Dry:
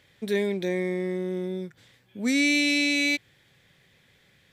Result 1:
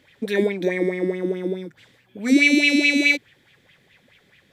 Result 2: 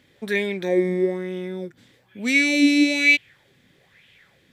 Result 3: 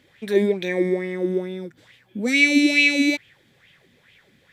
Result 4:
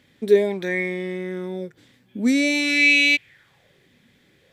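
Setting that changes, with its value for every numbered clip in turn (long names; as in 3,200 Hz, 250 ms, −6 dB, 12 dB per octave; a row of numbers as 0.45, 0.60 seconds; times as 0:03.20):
auto-filter bell, speed: 4.7, 1.1, 2.3, 0.49 Hertz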